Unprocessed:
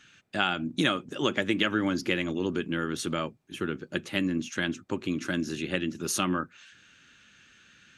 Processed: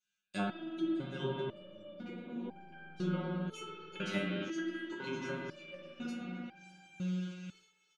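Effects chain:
low-shelf EQ 490 Hz −7.5 dB
notch filter 1,800 Hz, Q 5.4
treble cut that deepens with the level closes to 360 Hz, closed at −27.5 dBFS
spring reverb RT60 3.7 s, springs 38/55 ms, chirp 80 ms, DRR −3 dB
noise gate −48 dBFS, range −30 dB
bass and treble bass +3 dB, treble +12 dB
comb filter 5.5 ms, depth 76%
feedback echo with a high-pass in the loop 607 ms, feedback 36%, high-pass 530 Hz, level −12.5 dB
step-sequenced resonator 2 Hz 100–790 Hz
level +4 dB

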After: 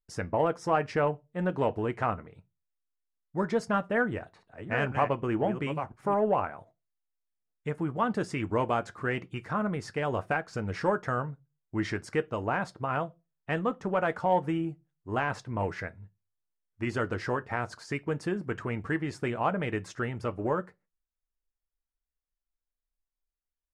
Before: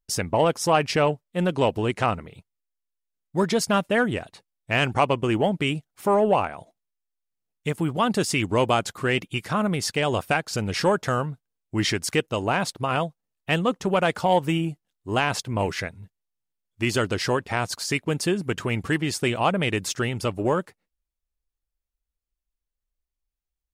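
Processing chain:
0:03.87–0:06.14: delay that plays each chunk backwards 513 ms, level −8 dB
low-pass filter 7,700 Hz 12 dB per octave
high shelf with overshoot 2,300 Hz −9 dB, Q 1.5
convolution reverb RT60 0.25 s, pre-delay 4 ms, DRR 10.5 dB
level −7 dB

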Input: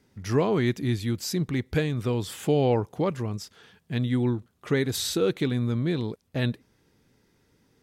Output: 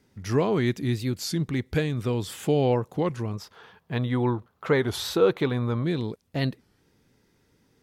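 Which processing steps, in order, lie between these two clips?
0:03.33–0:05.84: octave-band graphic EQ 250/500/1,000/8,000 Hz −3/+4/+11/−8 dB
wow of a warped record 33 1/3 rpm, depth 160 cents

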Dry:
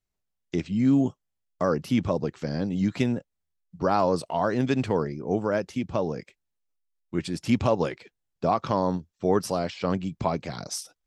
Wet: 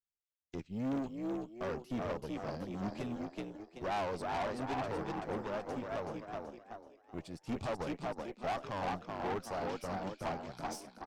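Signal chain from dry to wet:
on a send: echo with shifted repeats 379 ms, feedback 53%, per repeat +57 Hz, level −4 dB
on the sum: dynamic equaliser 800 Hz, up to +7 dB, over −39 dBFS, Q 2.7
tube saturation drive 24 dB, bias 0.75
floating-point word with a short mantissa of 6 bits
expander for the loud parts 1.5 to 1, over −48 dBFS
level −7.5 dB

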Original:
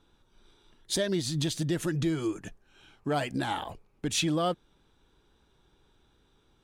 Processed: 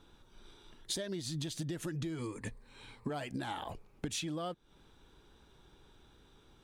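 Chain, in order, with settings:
0:02.18–0:03.10: EQ curve with evenly spaced ripples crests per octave 0.96, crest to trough 12 dB
downward compressor 16 to 1, threshold −39 dBFS, peak gain reduction 16 dB
level +4 dB

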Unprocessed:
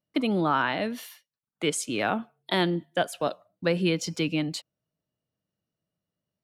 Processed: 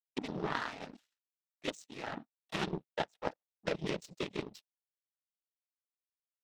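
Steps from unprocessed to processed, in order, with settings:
cochlear-implant simulation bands 12
power curve on the samples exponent 2
level −3 dB

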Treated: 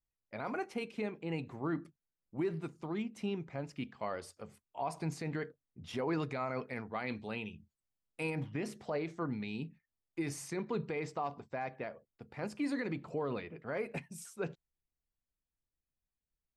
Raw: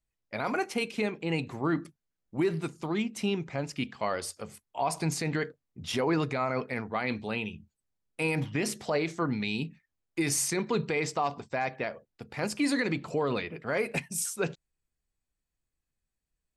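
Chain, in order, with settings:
high-shelf EQ 2,800 Hz −10 dB, from 0:06.08 −3 dB, from 0:08.30 −12 dB
level −7 dB

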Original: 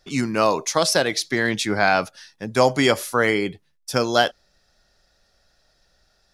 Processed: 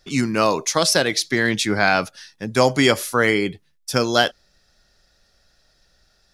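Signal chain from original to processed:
parametric band 750 Hz −4 dB 1.4 octaves
level +3 dB

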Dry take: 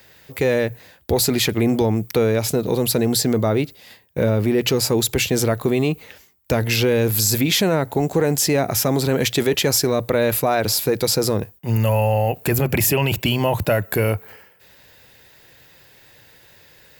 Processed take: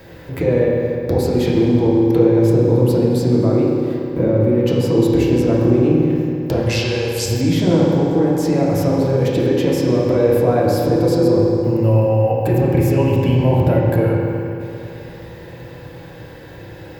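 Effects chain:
tilt shelving filter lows +8.5 dB, about 1,200 Hz
downward compressor 2 to 1, threshold −38 dBFS, peak gain reduction 16.5 dB
0:06.66–0:07.26: meter weighting curve ITU-R 468
convolution reverb RT60 2.8 s, pre-delay 3 ms, DRR −5.5 dB
level +6 dB

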